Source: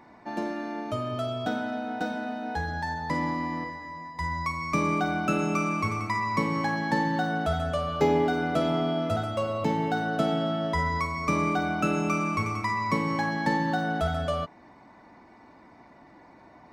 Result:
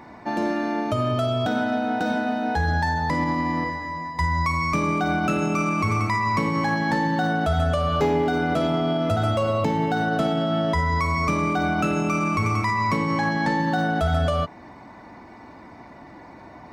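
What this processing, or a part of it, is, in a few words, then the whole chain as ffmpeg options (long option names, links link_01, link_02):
clipper into limiter: -filter_complex "[0:a]asoftclip=type=hard:threshold=-16.5dB,alimiter=limit=-23.5dB:level=0:latency=1:release=63,asettb=1/sr,asplit=3[link_01][link_02][link_03];[link_01]atrim=end=12.974[link_04];[link_02]atrim=start=12.97:end=13.6,asetpts=PTS-STARTPTS,afade=type=in:duration=0.004:curve=qsin,afade=type=out:start_time=0.626:duration=0.004:curve=qsin,lowpass=9400[link_05];[link_03]atrim=start=13.596[link_06];[link_04][link_05]acrossfade=duration=0.004:curve1=hsin:curve2=qsin[link_07];[link_07][link_06]acrossfade=duration=0.004:curve1=qsin:curve2=hsin,equalizer=frequency=84:width_type=o:width=1.3:gain=4.5,volume=8.5dB"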